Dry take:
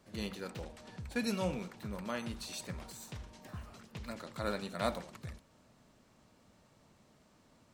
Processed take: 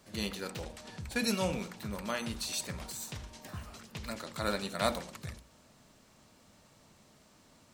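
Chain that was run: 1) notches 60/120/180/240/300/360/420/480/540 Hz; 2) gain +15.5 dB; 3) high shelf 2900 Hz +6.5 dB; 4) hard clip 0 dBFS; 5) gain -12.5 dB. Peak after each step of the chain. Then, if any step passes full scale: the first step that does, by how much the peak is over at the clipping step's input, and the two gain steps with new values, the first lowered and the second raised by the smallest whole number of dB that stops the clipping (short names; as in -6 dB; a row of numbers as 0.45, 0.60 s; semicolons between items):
-18.5, -3.0, -1.5, -1.5, -14.0 dBFS; no overload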